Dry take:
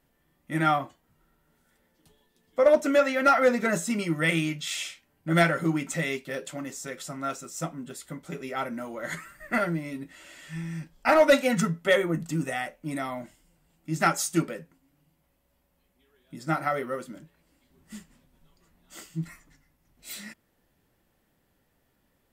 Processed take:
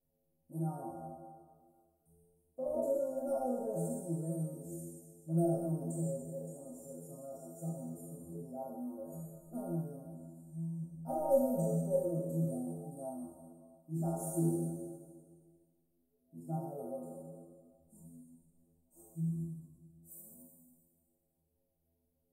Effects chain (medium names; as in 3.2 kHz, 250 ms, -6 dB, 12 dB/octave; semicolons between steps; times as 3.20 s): spectral sustain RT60 1.80 s; elliptic band-stop 670–9300 Hz, stop band 60 dB; inharmonic resonator 80 Hz, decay 0.62 s, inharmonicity 0.008